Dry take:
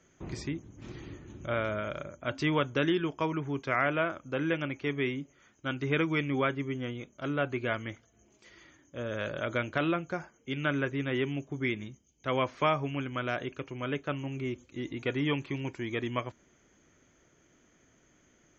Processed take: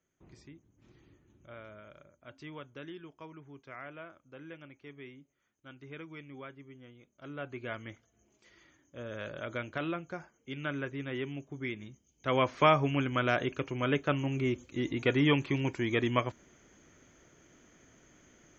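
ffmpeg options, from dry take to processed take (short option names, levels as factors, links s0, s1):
-af "volume=1.58,afade=t=in:st=6.99:d=0.91:silence=0.266073,afade=t=in:st=11.8:d=0.94:silence=0.316228"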